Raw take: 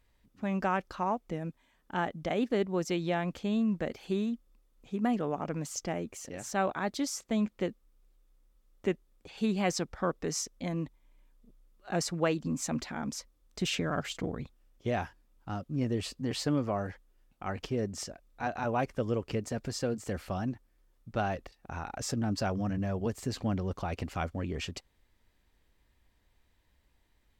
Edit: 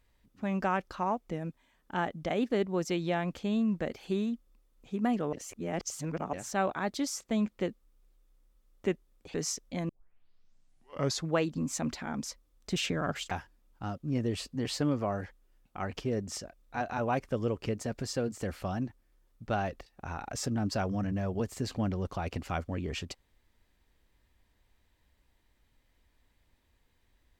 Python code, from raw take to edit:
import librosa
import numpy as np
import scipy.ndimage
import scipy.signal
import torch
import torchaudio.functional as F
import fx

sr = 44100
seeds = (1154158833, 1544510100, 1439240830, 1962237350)

y = fx.edit(x, sr, fx.reverse_span(start_s=5.33, length_s=1.0),
    fx.cut(start_s=9.34, length_s=0.89),
    fx.tape_start(start_s=10.78, length_s=1.44),
    fx.cut(start_s=14.2, length_s=0.77), tone=tone)